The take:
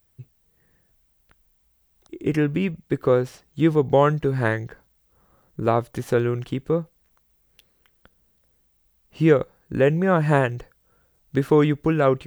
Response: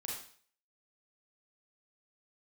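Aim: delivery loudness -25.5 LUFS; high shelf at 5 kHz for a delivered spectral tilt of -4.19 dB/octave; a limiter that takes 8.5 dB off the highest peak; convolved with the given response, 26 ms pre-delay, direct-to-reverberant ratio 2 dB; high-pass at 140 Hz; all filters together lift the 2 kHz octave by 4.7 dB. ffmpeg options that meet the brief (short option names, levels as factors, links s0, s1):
-filter_complex "[0:a]highpass=140,equalizer=f=2000:t=o:g=6.5,highshelf=f=5000:g=-3,alimiter=limit=0.316:level=0:latency=1,asplit=2[s0][s1];[1:a]atrim=start_sample=2205,adelay=26[s2];[s1][s2]afir=irnorm=-1:irlink=0,volume=0.794[s3];[s0][s3]amix=inputs=2:normalize=0,volume=0.708"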